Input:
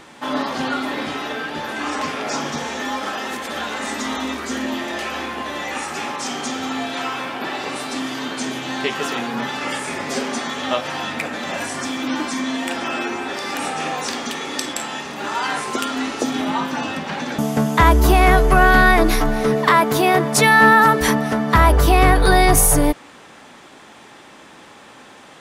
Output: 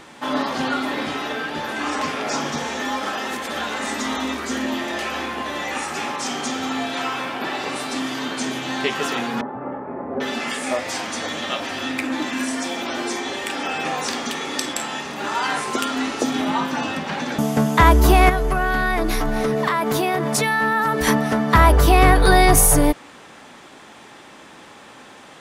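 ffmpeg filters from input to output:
ffmpeg -i in.wav -filter_complex "[0:a]asettb=1/sr,asplit=3[link_01][link_02][link_03];[link_01]atrim=end=9.414[link_04];[link_02]atrim=start=9.41:end=13.85,asetpts=PTS-STARTPTS,afade=type=in:duration=0.004:curve=qsin,afade=type=out:start_time=4.436:duration=0.004:curve=qsin,acrossover=split=160|1100[link_05][link_06][link_07];[link_05]adelay=140[link_08];[link_07]adelay=790[link_09];[link_08][link_06][link_09]amix=inputs=3:normalize=0,atrim=end_sample=195804[link_10];[link_03]atrim=start=13.846[link_11];[link_04][link_10]acrossfade=duration=0.004:curve1=hsin:curve2=qsin[link_12];[link_12][link_11]acrossfade=duration=0.004:curve1=qsin:curve2=hsin,asettb=1/sr,asplit=3[link_13][link_14][link_15];[link_13]atrim=end=18.294[link_16];[link_14]atrim=start=18.29:end=21.07,asetpts=PTS-STARTPTS,afade=type=in:duration=0.004:curve=qsin,afade=type=out:start_time=2.776:duration=0.004:curve=qsin,acompressor=threshold=-16dB:ratio=6:attack=3.2:release=140:knee=1:detection=peak[link_17];[link_15]atrim=start=21.066[link_18];[link_16][link_17]acrossfade=duration=0.004:curve1=hsin:curve2=qsin[link_19];[link_19][link_18]acrossfade=duration=0.004:curve1=qsin:curve2=hsin" out.wav

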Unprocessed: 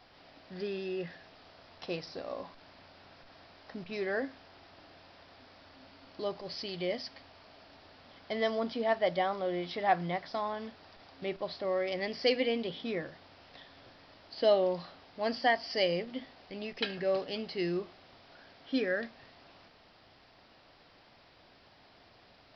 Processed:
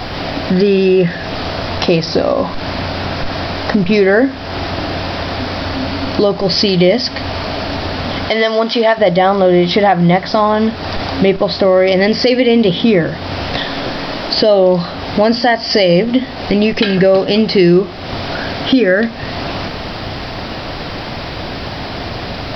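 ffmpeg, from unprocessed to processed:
ffmpeg -i in.wav -filter_complex "[0:a]asettb=1/sr,asplit=3[link_01][link_02][link_03];[link_01]atrim=end=8.294[link_04];[link_02]atrim=start=8.29:end=8.98,asetpts=PTS-STARTPTS,afade=type=in:duration=0.004:curve=qsin,afade=type=out:start_time=0.686:duration=0.004:curve=qsin,highpass=frequency=1000:poles=1[link_05];[link_03]atrim=start=8.976[link_06];[link_04][link_05]acrossfade=duration=0.004:curve1=hsin:curve2=qsin[link_07];[link_07][link_06]acrossfade=duration=0.004:curve1=qsin:curve2=hsin,asettb=1/sr,asplit=3[link_08][link_09][link_10];[link_08]atrim=end=13.584[link_11];[link_09]atrim=start=13.58:end=14.36,asetpts=PTS-STARTPTS,afade=type=in:duration=0.004:curve=qsin,afade=type=out:start_time=0.776:duration=0.004:curve=qsin,equalizer=frequency=87:width_type=o:width=0.77:gain=-14.5[link_12];[link_10]atrim=start=14.356[link_13];[link_11][link_12]acrossfade=duration=0.004:curve1=hsin:curve2=qsin[link_14];[link_14][link_13]acrossfade=duration=0.004:curve1=qsin:curve2=hsin,lowshelf=frequency=300:gain=9,acompressor=threshold=-48dB:ratio=2.5,alimiter=level_in=35dB:limit=-1dB:release=50:level=0:latency=1,volume=-1dB" out.wav

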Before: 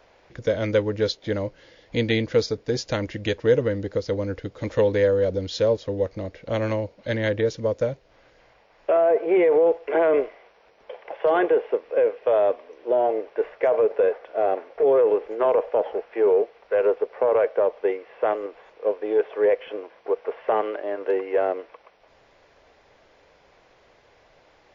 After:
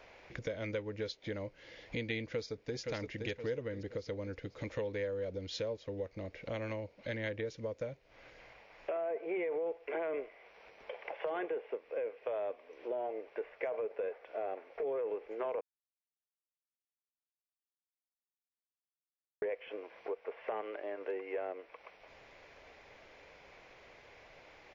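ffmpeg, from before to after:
ffmpeg -i in.wav -filter_complex "[0:a]asplit=2[link_01][link_02];[link_02]afade=type=in:start_time=2.31:duration=0.01,afade=type=out:start_time=2.78:duration=0.01,aecho=0:1:520|1040|1560|2080|2600:0.446684|0.178673|0.0714694|0.0285877|0.0114351[link_03];[link_01][link_03]amix=inputs=2:normalize=0,asplit=3[link_04][link_05][link_06];[link_04]atrim=end=15.61,asetpts=PTS-STARTPTS,afade=type=out:start_time=15.606:duration=0.004:curve=hsin[link_07];[link_05]atrim=start=15.61:end=19.42,asetpts=PTS-STARTPTS,volume=0[link_08];[link_06]atrim=start=19.42,asetpts=PTS-STARTPTS,afade=type=in:duration=0.004:curve=hsin[link_09];[link_07][link_08][link_09]concat=n=3:v=0:a=1,acompressor=threshold=-41dB:ratio=2.5,equalizer=frequency=2300:width=2.5:gain=7.5,volume=-2dB" out.wav

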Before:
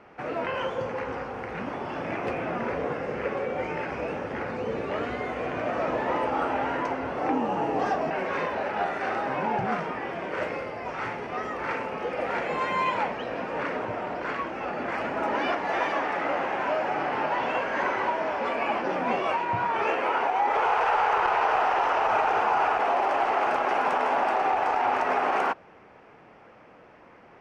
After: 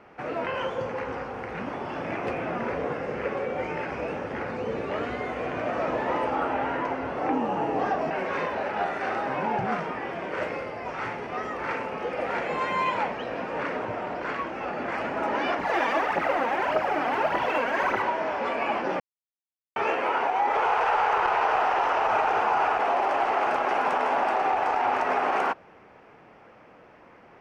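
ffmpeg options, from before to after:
ffmpeg -i in.wav -filter_complex "[0:a]asettb=1/sr,asplit=3[link_01][link_02][link_03];[link_01]atrim=end=6.354[link_04];[link_02]atrim=start=6.35:end=7.99,asetpts=PTS-STARTPTS,afade=type=in:duration=0.004:curve=qsin,afade=type=out:start_time=1.636:duration=0.004:curve=qsin,acrossover=split=3600[link_05][link_06];[link_06]acompressor=threshold=-57dB:ratio=4:attack=1:release=60[link_07];[link_05][link_07]amix=inputs=2:normalize=0[link_08];[link_03]atrim=start=7.986[link_09];[link_04][link_08]acrossfade=duration=0.004:curve1=hsin:curve2=qsin[link_10];[link_10][link_09]acrossfade=duration=0.004:curve1=qsin:curve2=hsin,asettb=1/sr,asplit=3[link_11][link_12][link_13];[link_11]atrim=end=15.594[link_14];[link_12]atrim=start=15.59:end=18.02,asetpts=PTS-STARTPTS,afade=type=in:duration=0.004:curve=qsin,afade=type=out:start_time=2.426:duration=0.004:curve=qsin,aphaser=in_gain=1:out_gain=1:delay=4.5:decay=0.61:speed=1.7:type=triangular[link_15];[link_13]atrim=start=18.016[link_16];[link_14][link_15]acrossfade=duration=0.004:curve1=hsin:curve2=qsin[link_17];[link_17][link_16]acrossfade=duration=0.004:curve1=qsin:curve2=hsin,asplit=3[link_18][link_19][link_20];[link_18]atrim=end=19,asetpts=PTS-STARTPTS,afade=type=out:start_time=18.996:duration=0.004:curve=hsin[link_21];[link_19]atrim=start=19:end=19.76,asetpts=PTS-STARTPTS,volume=0[link_22];[link_20]atrim=start=19.76,asetpts=PTS-STARTPTS,afade=type=in:duration=0.004:curve=hsin[link_23];[link_21][link_22][link_23]concat=n=3:v=0:a=1" out.wav

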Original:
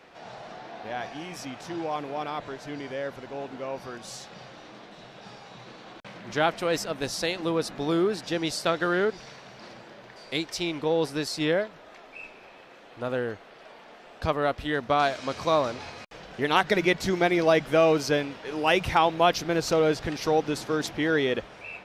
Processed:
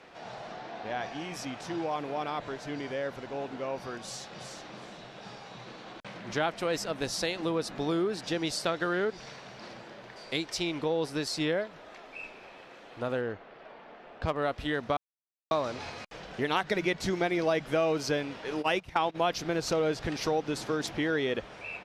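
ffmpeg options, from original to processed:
ffmpeg -i in.wav -filter_complex "[0:a]asettb=1/sr,asplit=3[link_01][link_02][link_03];[link_01]atrim=end=0.494[link_04];[link_02]atrim=start=0.49:end=1.32,asetpts=PTS-STARTPTS,afade=type=in:duration=0.004:curve=qsin,afade=type=out:start_time=0.826:duration=0.004:curve=qsin,equalizer=frequency=11000:width=1.8:gain=-6[link_05];[link_03]atrim=start=1.316[link_06];[link_04][link_05]acrossfade=duration=0.004:curve1=hsin:curve2=qsin[link_07];[link_07][link_06]acrossfade=duration=0.004:curve1=qsin:curve2=hsin,asplit=2[link_08][link_09];[link_09]afade=type=in:start_time=3.97:duration=0.01,afade=type=out:start_time=4.6:duration=0.01,aecho=0:1:370|740|1110:0.473151|0.0946303|0.0189261[link_10];[link_08][link_10]amix=inputs=2:normalize=0,asettb=1/sr,asplit=3[link_11][link_12][link_13];[link_11]atrim=end=13.214[link_14];[link_12]atrim=start=13.21:end=14.36,asetpts=PTS-STARTPTS,afade=type=in:duration=0.004:curve=qsin,afade=type=out:start_time=1.146:duration=0.004:curve=qsin,adynamicsmooth=sensitivity=3:basefreq=3000[link_15];[link_13]atrim=start=14.356[link_16];[link_14][link_15]acrossfade=duration=0.004:curve1=hsin:curve2=qsin[link_17];[link_17][link_16]acrossfade=duration=0.004:curve1=qsin:curve2=hsin,asplit=3[link_18][link_19][link_20];[link_18]afade=type=out:start_time=18.61:duration=0.02[link_21];[link_19]agate=range=-18dB:threshold=-26dB:ratio=16:release=100:detection=peak,afade=type=in:start_time=18.61:duration=0.02,afade=type=out:start_time=19.14:duration=0.02[link_22];[link_20]afade=type=in:start_time=19.14:duration=0.02[link_23];[link_21][link_22][link_23]amix=inputs=3:normalize=0,asplit=3[link_24][link_25][link_26];[link_24]atrim=end=14.97,asetpts=PTS-STARTPTS,afade=type=out:start_time=14.966:duration=0.004:curve=hsin[link_27];[link_25]atrim=start=14.97:end=15.51,asetpts=PTS-STARTPTS,volume=0[link_28];[link_26]atrim=start=15.51,asetpts=PTS-STARTPTS,afade=type=in:duration=0.004:curve=hsin[link_29];[link_27][link_28][link_29]concat=n=3:v=0:a=1,lowpass=12000,acompressor=threshold=-29dB:ratio=2" out.wav

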